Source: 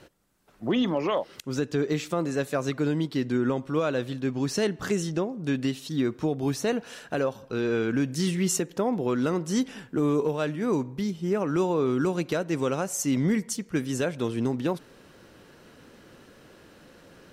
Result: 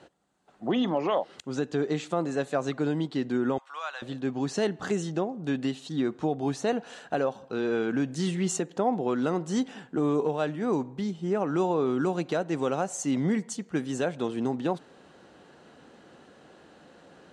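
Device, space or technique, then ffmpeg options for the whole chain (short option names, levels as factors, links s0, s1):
car door speaker: -filter_complex "[0:a]highpass=86,equalizer=f=110:t=q:w=4:g=-9,equalizer=f=760:t=q:w=4:g=8,equalizer=f=2300:t=q:w=4:g=-4,equalizer=f=5400:t=q:w=4:g=-7,lowpass=f=8200:w=0.5412,lowpass=f=8200:w=1.3066,asettb=1/sr,asplit=3[s0][s1][s2];[s0]atrim=end=3.584[s3];[s1]atrim=start=3.58:end=4.02,asetpts=PTS-STARTPTS,afade=t=in:d=0.004:c=qsin,afade=t=out:st=0.436:d=0.004:c=qsin,highpass=f=950:w=0.5412,highpass=f=950:w=1.3066[s4];[s2]atrim=start=4.016[s5];[s3][s4]acrossfade=d=0.004:c1=hsin:c2=qsin[s6];[s6][s5]acrossfade=d=0.004:c1=qsin:c2=hsin,volume=0.841"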